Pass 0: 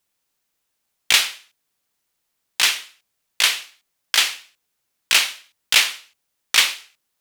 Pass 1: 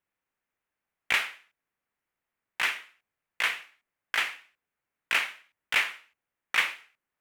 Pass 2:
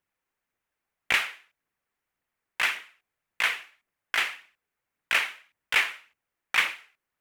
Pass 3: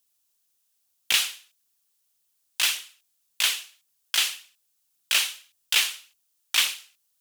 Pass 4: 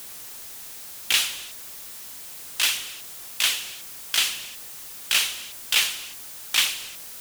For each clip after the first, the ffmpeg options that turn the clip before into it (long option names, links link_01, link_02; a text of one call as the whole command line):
ffmpeg -i in.wav -af "highshelf=frequency=3000:width_type=q:width=1.5:gain=-12.5,volume=-6.5dB" out.wav
ffmpeg -i in.wav -af "aphaser=in_gain=1:out_gain=1:delay=3:decay=0.28:speed=1.8:type=triangular,volume=1.5dB" out.wav
ffmpeg -i in.wav -filter_complex "[0:a]acrossover=split=4500[link_01][link_02];[link_02]asoftclip=type=hard:threshold=-40dB[link_03];[link_01][link_03]amix=inputs=2:normalize=0,aexciter=amount=8.3:drive=6.9:freq=3100,volume=-5.5dB" out.wav
ffmpeg -i in.wav -af "aeval=exprs='val(0)+0.5*0.0251*sgn(val(0))':channel_layout=same,acrusher=bits=3:mode=log:mix=0:aa=0.000001" out.wav